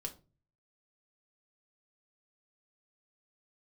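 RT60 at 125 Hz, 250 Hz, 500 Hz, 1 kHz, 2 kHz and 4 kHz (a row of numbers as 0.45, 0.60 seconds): 0.75, 0.50, 0.40, 0.30, 0.25, 0.20 seconds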